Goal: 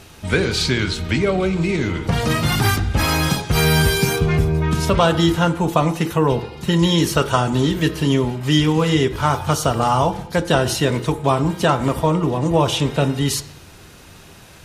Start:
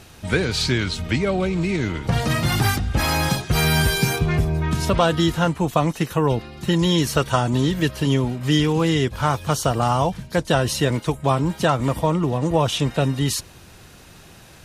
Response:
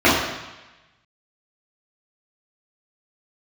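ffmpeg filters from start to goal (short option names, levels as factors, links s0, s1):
-filter_complex "[0:a]asplit=2[s0][s1];[1:a]atrim=start_sample=2205,asetrate=57330,aresample=44100[s2];[s1][s2]afir=irnorm=-1:irlink=0,volume=0.0211[s3];[s0][s3]amix=inputs=2:normalize=0,volume=1.26"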